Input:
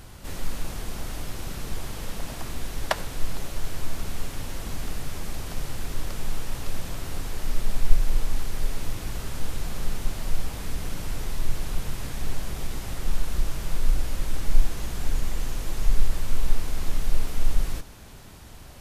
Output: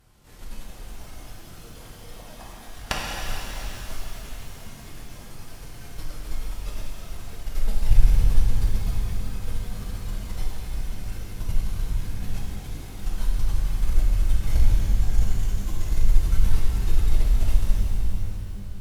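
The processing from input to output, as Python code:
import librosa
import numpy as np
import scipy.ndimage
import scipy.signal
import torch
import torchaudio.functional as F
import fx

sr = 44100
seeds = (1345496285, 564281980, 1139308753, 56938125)

y = fx.noise_reduce_blind(x, sr, reduce_db=9)
y = fx.cheby_harmonics(y, sr, harmonics=(3, 6), levels_db=(-18, -12), full_scale_db=-1.5)
y = fx.rev_shimmer(y, sr, seeds[0], rt60_s=3.4, semitones=12, shimmer_db=-8, drr_db=-4.0)
y = F.gain(torch.from_numpy(y), -3.0).numpy()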